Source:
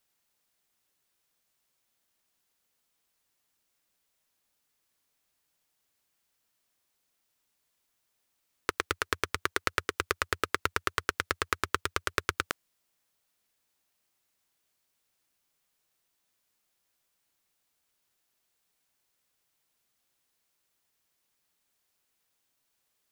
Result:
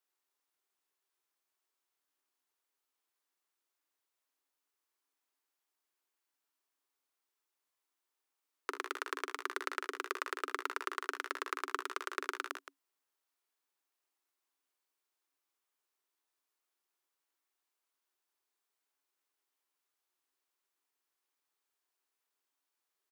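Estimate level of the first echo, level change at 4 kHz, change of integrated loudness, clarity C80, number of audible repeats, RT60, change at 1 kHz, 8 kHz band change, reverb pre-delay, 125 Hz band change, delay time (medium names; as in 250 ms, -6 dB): -7.0 dB, -10.0 dB, -7.5 dB, no reverb, 3, no reverb, -5.5 dB, -10.5 dB, no reverb, under -40 dB, 44 ms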